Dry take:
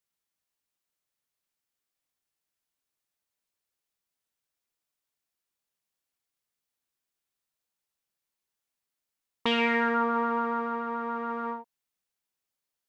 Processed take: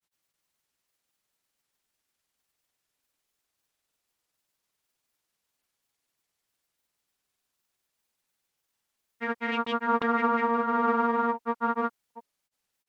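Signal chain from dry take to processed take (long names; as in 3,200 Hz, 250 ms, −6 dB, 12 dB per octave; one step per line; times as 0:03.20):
compressor whose output falls as the input rises −29 dBFS, ratio −0.5
granular cloud 100 ms, spray 692 ms, pitch spread up and down by 0 semitones
level +6 dB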